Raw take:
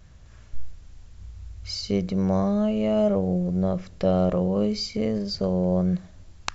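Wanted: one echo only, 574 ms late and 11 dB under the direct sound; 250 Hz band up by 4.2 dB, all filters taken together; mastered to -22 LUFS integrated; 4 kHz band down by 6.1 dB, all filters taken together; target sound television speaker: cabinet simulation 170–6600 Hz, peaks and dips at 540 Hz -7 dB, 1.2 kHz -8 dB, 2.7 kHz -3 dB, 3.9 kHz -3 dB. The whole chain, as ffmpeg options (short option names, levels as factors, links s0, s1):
-af "highpass=f=170:w=0.5412,highpass=f=170:w=1.3066,equalizer=f=540:t=q:w=4:g=-7,equalizer=f=1200:t=q:w=4:g=-8,equalizer=f=2700:t=q:w=4:g=-3,equalizer=f=3900:t=q:w=4:g=-3,lowpass=f=6600:w=0.5412,lowpass=f=6600:w=1.3066,equalizer=f=250:t=o:g=8,equalizer=f=4000:t=o:g=-6,aecho=1:1:574:0.282"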